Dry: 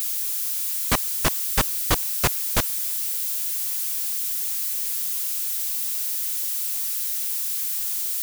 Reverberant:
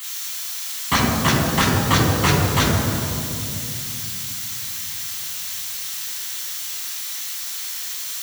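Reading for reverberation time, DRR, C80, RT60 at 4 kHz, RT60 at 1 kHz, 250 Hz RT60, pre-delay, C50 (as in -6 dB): 2.8 s, -5.0 dB, 1.5 dB, 1.7 s, 2.5 s, 4.4 s, 3 ms, 0.0 dB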